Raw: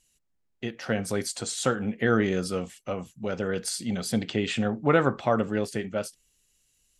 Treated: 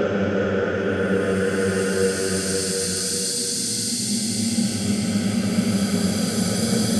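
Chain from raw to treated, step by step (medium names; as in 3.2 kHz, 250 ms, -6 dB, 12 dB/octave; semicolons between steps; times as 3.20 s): Paulstretch 9.5×, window 0.50 s, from 3.35 s; trim +8 dB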